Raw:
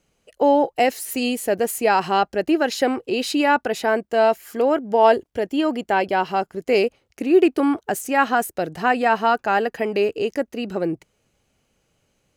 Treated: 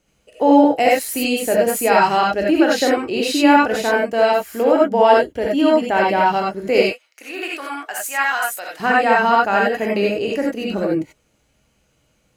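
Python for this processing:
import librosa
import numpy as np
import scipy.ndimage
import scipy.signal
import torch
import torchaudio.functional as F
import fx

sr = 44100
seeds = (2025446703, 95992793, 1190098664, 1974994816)

y = fx.highpass(x, sr, hz=1100.0, slope=12, at=(6.82, 8.8))
y = fx.rev_gated(y, sr, seeds[0], gate_ms=110, shape='rising', drr_db=-3.0)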